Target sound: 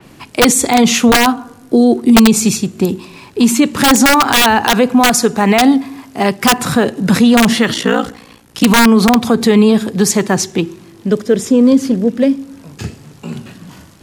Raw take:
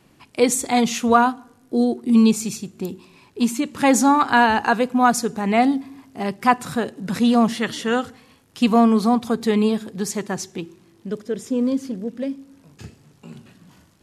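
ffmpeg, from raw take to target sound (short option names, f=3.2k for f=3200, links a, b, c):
-filter_complex "[0:a]asettb=1/sr,asplit=3[a][b][c];[a]atrim=end=7.734[d];[b]atrim=start=7.73:end=8.64,asetpts=PTS-STARTPTS,afade=t=in:d=0.004:c=qsin,afade=t=out:st=0.906:d=0.004:c=qsin,aeval=exprs='val(0)*sin(2*PI*29*n/s)':c=same[e];[c]atrim=start=8.636[f];[d][e]acrossfade=d=0.004:c1=hsin:c2=qsin[g];[g][f]acrossfade=d=0.004:c1=qsin:c2=hsin,acrossover=split=230|1300|2100[h][i][j][k];[j]acrusher=bits=4:mode=log:mix=0:aa=0.000001[l];[h][i][l][k]amix=inputs=4:normalize=0,asettb=1/sr,asplit=3[m][n][o];[m]atrim=end=5.004[p];[n]atrim=start=5:end=6.44,asetpts=PTS-STARTPTS,afade=t=in:d=0.004:c=qsin,afade=t=out:st=1.436:d=0.004:c=qsin,lowshelf=f=360:g=-5.5[q];[o]atrim=start=6.436[r];[p][q]acrossfade=d=0.004:c1=hsin:c2=qsin[s];[s][r]acrossfade=d=0.004:c1=qsin:c2=hsin,aeval=exprs='(mod(2.51*val(0)+1,2)-1)/2.51':c=same,alimiter=level_in=15.5dB:limit=-1dB:release=50:level=0:latency=1,adynamicequalizer=threshold=0.0631:dfrequency=4500:dqfactor=0.7:tfrequency=4500:tqfactor=0.7:attack=5:release=100:ratio=0.375:range=1.5:mode=cutabove:tftype=highshelf,volume=-1dB"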